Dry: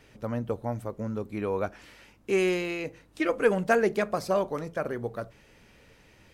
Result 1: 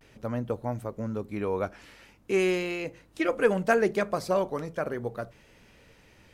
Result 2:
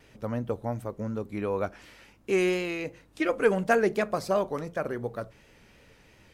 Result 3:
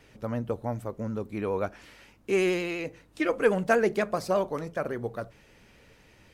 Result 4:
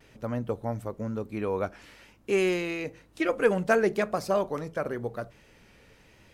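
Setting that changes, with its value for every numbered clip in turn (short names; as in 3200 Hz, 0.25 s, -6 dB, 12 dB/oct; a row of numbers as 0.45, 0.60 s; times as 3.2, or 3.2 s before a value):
vibrato, rate: 0.41, 2.8, 12, 1 Hz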